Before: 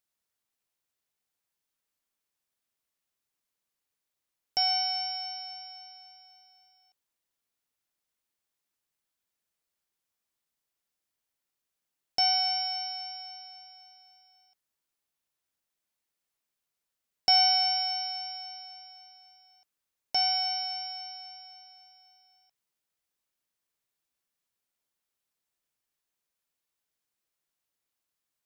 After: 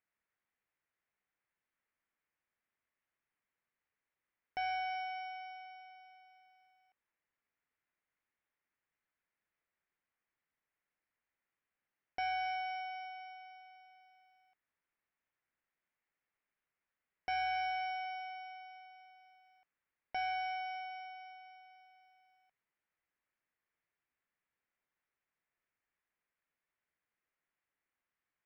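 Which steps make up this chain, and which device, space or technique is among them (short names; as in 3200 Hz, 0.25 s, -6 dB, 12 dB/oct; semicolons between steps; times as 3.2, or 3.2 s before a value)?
overdriven synthesiser ladder filter (soft clip -24 dBFS, distortion -11 dB; ladder low-pass 2400 Hz, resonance 45%); gain +7 dB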